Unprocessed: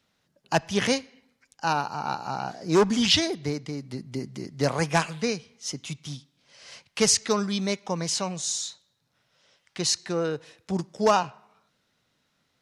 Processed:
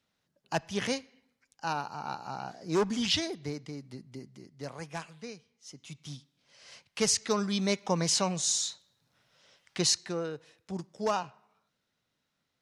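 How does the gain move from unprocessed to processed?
3.78 s -7.5 dB
4.57 s -16 dB
5.68 s -16 dB
6.09 s -6 dB
7.14 s -6 dB
7.89 s +0.5 dB
9.8 s +0.5 dB
10.3 s -9 dB

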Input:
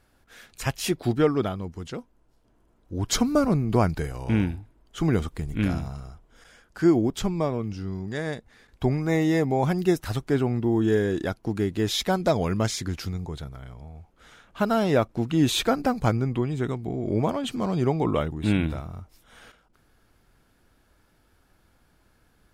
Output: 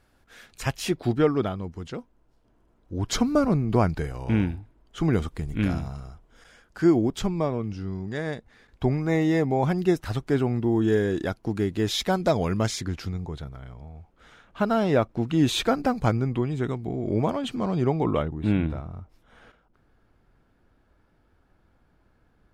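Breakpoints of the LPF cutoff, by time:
LPF 6 dB/oct
8500 Hz
from 0.84 s 4700 Hz
from 5.13 s 8100 Hz
from 7.27 s 4600 Hz
from 10.26 s 9800 Hz
from 12.81 s 3700 Hz
from 15.25 s 6500 Hz
from 17.48 s 3700 Hz
from 18.22 s 1400 Hz

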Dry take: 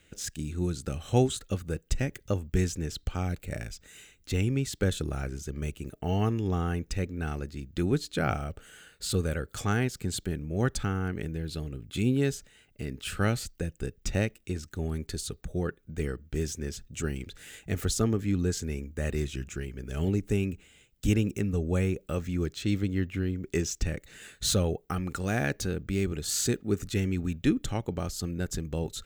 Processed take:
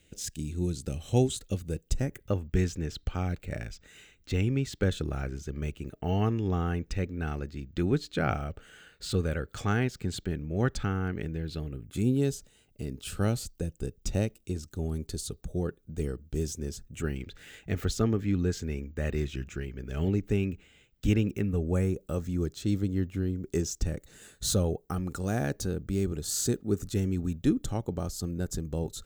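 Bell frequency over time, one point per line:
bell -10.5 dB 1.3 oct
1.83 s 1300 Hz
2.43 s 11000 Hz
11.5 s 11000 Hz
12.15 s 1900 Hz
16.71 s 1900 Hz
17.16 s 10000 Hz
21.26 s 10000 Hz
21.95 s 2300 Hz

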